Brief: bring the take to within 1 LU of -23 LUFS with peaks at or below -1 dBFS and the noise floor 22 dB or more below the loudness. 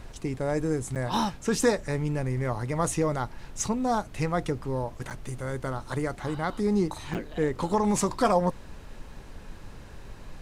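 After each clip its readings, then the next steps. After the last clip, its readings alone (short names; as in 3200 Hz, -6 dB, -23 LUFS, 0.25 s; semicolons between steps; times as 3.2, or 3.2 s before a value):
dropouts 3; longest dropout 7.8 ms; noise floor -45 dBFS; noise floor target -51 dBFS; loudness -28.5 LUFS; peak -10.5 dBFS; loudness target -23.0 LUFS
-> interpolate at 0.95/5.1/7.14, 7.8 ms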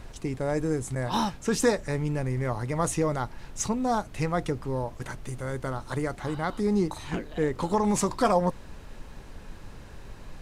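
dropouts 0; noise floor -45 dBFS; noise floor target -51 dBFS
-> noise print and reduce 6 dB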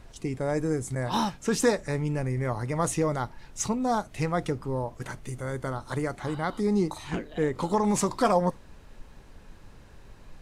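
noise floor -51 dBFS; loudness -28.5 LUFS; peak -10.5 dBFS; loudness target -23.0 LUFS
-> gain +5.5 dB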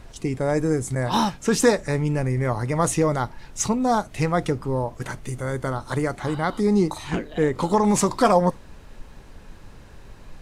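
loudness -23.0 LUFS; peak -5.0 dBFS; noise floor -45 dBFS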